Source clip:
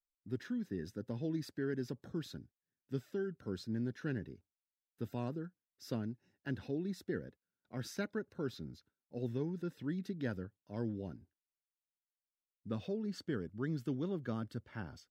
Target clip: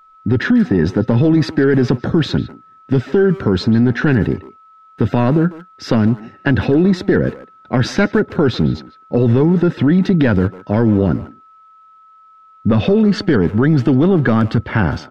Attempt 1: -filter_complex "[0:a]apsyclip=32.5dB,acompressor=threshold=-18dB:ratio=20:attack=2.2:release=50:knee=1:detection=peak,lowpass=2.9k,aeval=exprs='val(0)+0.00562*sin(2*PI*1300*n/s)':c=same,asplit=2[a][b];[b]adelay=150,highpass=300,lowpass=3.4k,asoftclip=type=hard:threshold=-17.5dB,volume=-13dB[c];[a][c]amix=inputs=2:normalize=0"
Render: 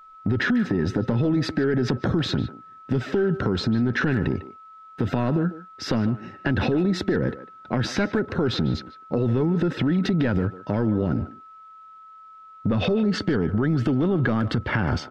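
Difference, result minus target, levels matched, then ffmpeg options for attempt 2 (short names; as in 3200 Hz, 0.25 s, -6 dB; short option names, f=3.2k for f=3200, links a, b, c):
compressor: peak gain reduction +9.5 dB
-filter_complex "[0:a]apsyclip=32.5dB,acompressor=threshold=-8dB:ratio=20:attack=2.2:release=50:knee=1:detection=peak,lowpass=2.9k,aeval=exprs='val(0)+0.00562*sin(2*PI*1300*n/s)':c=same,asplit=2[a][b];[b]adelay=150,highpass=300,lowpass=3.4k,asoftclip=type=hard:threshold=-17.5dB,volume=-13dB[c];[a][c]amix=inputs=2:normalize=0"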